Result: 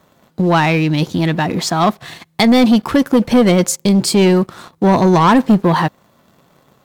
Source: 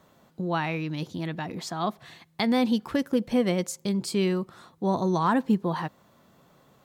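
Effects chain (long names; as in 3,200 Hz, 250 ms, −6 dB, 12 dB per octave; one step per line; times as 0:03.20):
leveller curve on the samples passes 2
level +9 dB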